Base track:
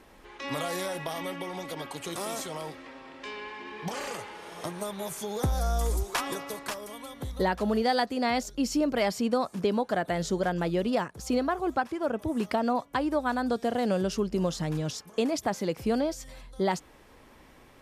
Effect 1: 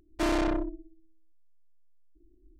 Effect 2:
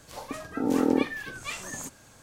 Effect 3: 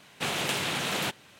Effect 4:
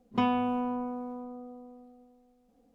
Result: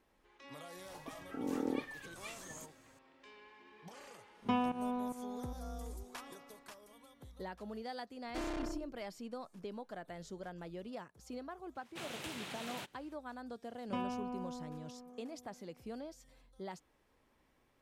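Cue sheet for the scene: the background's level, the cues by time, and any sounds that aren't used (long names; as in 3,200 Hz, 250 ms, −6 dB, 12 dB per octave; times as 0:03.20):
base track −18.5 dB
0:00.77: mix in 2 −13 dB
0:04.31: mix in 4 −6 dB + fake sidechain pumping 148 BPM, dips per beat 1, −16 dB, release 194 ms
0:08.15: mix in 1 −13 dB
0:11.75: mix in 3 −16 dB
0:13.75: mix in 4 −12 dB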